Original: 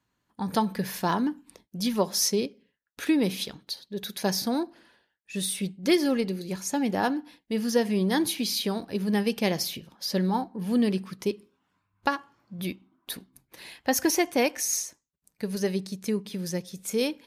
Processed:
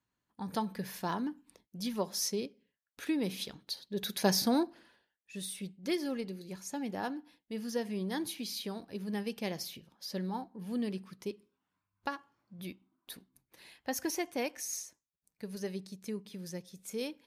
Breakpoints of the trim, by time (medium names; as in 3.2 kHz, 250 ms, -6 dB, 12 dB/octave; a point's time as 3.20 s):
3.19 s -9 dB
4.08 s -1 dB
4.60 s -1 dB
5.40 s -11 dB